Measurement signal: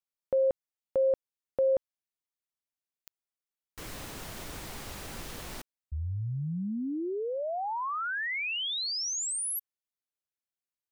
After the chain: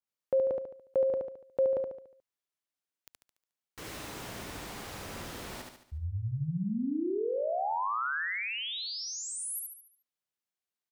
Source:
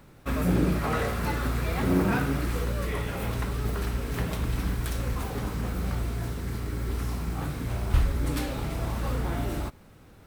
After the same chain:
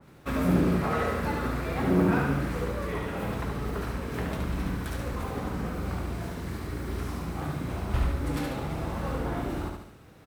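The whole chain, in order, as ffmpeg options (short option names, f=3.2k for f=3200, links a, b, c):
-af "highpass=f=93:p=1,highshelf=f=7.8k:g=-4.5,aecho=1:1:72|144|216|288|360|432:0.631|0.284|0.128|0.0575|0.0259|0.0116,adynamicequalizer=threshold=0.00562:dfrequency=2000:dqfactor=0.7:tfrequency=2000:tqfactor=0.7:attack=5:release=100:ratio=0.375:range=3:mode=cutabove:tftype=highshelf"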